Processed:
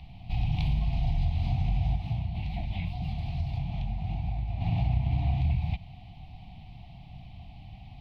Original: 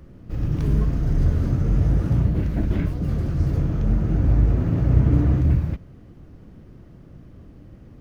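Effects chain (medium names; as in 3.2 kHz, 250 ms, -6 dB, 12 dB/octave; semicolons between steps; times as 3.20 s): FFT filter 120 Hz 0 dB, 190 Hz -4 dB, 350 Hz -20 dB, 520 Hz -26 dB, 740 Hz +15 dB, 1.5 kHz -24 dB, 2.3 kHz +12 dB, 4 kHz +13 dB, 6.3 kHz -9 dB; compression, threshold -23 dBFS, peak gain reduction 12.5 dB; 1.96–4.61 s: flange 1.7 Hz, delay 4.5 ms, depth 7.7 ms, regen +74%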